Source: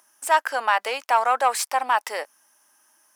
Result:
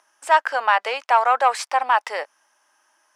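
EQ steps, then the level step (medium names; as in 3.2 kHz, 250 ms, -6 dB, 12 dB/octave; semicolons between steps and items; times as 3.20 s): high-pass 410 Hz 12 dB/octave; distance through air 54 m; treble shelf 6.8 kHz -7.5 dB; +3.5 dB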